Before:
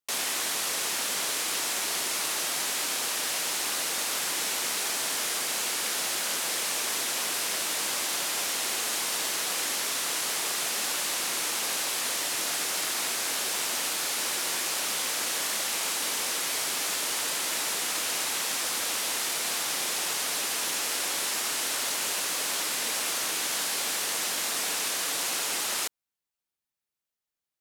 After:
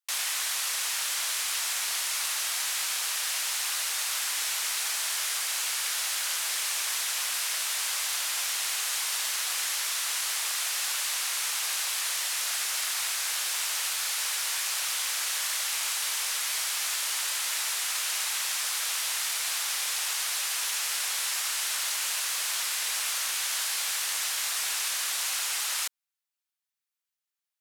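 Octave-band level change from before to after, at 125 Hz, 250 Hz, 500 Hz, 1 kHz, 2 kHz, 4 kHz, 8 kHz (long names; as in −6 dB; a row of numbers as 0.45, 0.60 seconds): below −30 dB, below −20 dB, −12.0 dB, −3.5 dB, −0.5 dB, 0.0 dB, 0.0 dB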